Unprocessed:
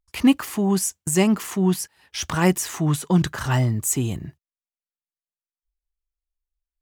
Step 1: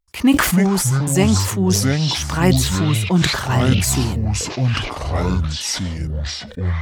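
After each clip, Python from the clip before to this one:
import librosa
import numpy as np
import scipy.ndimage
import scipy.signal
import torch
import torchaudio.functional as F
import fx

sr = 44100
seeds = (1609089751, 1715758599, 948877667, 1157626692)

y = fx.echo_pitch(x, sr, ms=185, semitones=-6, count=3, db_per_echo=-3.0)
y = fx.sustainer(y, sr, db_per_s=51.0)
y = y * librosa.db_to_amplitude(1.5)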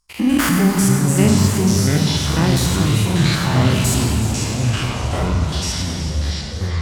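y = fx.spec_steps(x, sr, hold_ms=100)
y = fx.rev_schroeder(y, sr, rt60_s=2.1, comb_ms=28, drr_db=2.5)
y = fx.echo_warbled(y, sr, ms=374, feedback_pct=70, rate_hz=2.8, cents=141, wet_db=-12.0)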